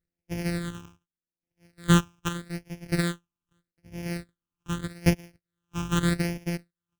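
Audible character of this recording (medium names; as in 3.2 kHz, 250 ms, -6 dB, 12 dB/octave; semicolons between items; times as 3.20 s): a buzz of ramps at a fixed pitch in blocks of 256 samples; chopped level 0.7 Hz, depth 65%, duty 60%; phasing stages 8, 0.82 Hz, lowest notch 580–1200 Hz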